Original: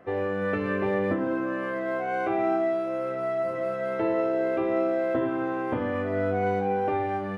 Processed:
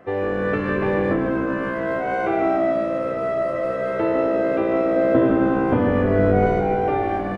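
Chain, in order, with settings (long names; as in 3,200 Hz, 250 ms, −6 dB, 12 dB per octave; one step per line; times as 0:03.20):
0:04.96–0:06.46: low-shelf EQ 470 Hz +7.5 dB
echo with shifted repeats 149 ms, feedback 46%, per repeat −58 Hz, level −7.5 dB
downsampling to 22,050 Hz
level +4.5 dB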